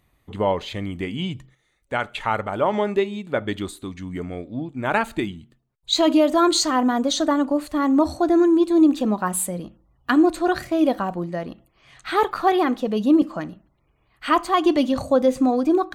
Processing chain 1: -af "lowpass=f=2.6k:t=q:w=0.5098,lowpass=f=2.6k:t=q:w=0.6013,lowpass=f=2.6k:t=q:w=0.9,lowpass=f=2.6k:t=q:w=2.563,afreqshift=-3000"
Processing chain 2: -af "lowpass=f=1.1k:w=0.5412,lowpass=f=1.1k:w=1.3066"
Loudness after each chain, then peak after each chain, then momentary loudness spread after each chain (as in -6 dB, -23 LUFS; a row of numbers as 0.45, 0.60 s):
-18.0, -22.0 LUFS; -6.0, -7.5 dBFS; 15, 15 LU